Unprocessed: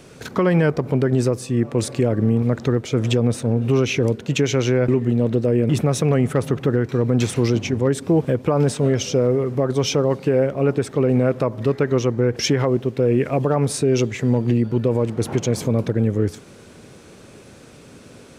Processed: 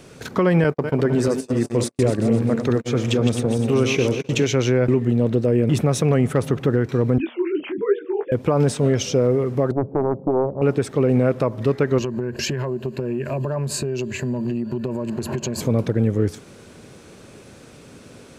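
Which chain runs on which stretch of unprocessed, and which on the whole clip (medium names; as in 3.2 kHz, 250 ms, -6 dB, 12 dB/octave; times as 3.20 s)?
0.64–4.47 s: backward echo that repeats 128 ms, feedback 62%, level -6.5 dB + gate -24 dBFS, range -47 dB + bass shelf 87 Hz -10 dB
7.18–8.32 s: formants replaced by sine waves + de-hum 236.6 Hz, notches 2 + detune thickener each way 41 cents
9.71–10.62 s: Bessel low-pass 540 Hz, order 8 + loudspeaker Doppler distortion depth 0.86 ms
11.98–15.61 s: rippled EQ curve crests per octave 1.4, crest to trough 12 dB + compression 12:1, threshold -20 dBFS
whole clip: none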